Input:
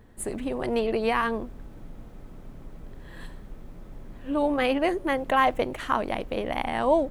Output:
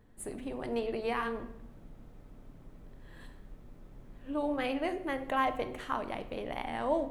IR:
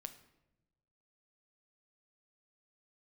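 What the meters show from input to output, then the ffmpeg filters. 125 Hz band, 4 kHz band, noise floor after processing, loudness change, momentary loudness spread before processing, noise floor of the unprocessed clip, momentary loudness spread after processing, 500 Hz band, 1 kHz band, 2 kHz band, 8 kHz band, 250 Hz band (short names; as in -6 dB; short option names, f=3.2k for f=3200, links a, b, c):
-8.0 dB, -8.5 dB, -54 dBFS, -8.5 dB, 20 LU, -45 dBFS, 22 LU, -8.5 dB, -8.5 dB, -8.5 dB, n/a, -8.0 dB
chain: -filter_complex "[1:a]atrim=start_sample=2205[a];[0:a][a]afir=irnorm=-1:irlink=0,volume=-4dB"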